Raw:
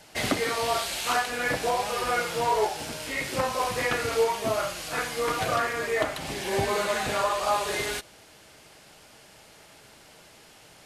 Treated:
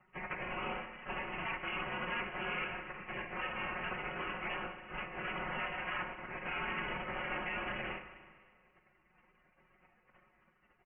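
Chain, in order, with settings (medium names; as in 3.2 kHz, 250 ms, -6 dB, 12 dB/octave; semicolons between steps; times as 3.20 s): formant shift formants -3 st; spectral gate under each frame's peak -15 dB weak; high-pass 320 Hz 6 dB/octave; peak limiter -28.5 dBFS, peak gain reduction 11 dB; comb 5.5 ms, depth 68%; Schroeder reverb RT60 1.7 s, combs from 32 ms, DRR 8.5 dB; frequency inversion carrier 3.1 kHz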